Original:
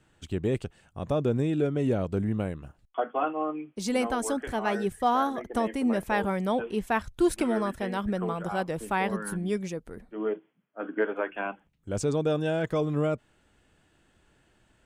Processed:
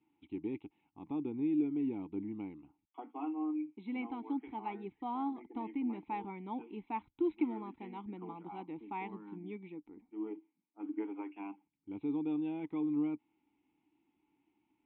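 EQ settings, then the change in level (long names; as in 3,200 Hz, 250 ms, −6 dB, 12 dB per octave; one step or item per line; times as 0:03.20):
formant filter u
linear-phase brick-wall low-pass 4,100 Hz
0.0 dB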